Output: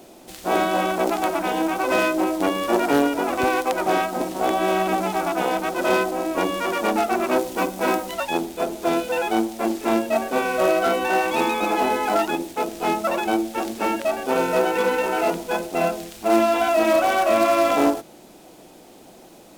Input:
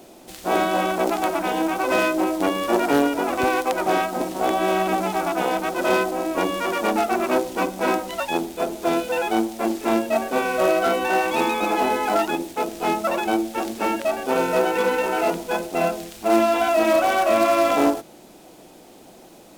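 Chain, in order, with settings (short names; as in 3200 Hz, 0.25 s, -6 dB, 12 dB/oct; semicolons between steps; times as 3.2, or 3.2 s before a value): 7.38–8.14 high shelf 10000 Hz +5.5 dB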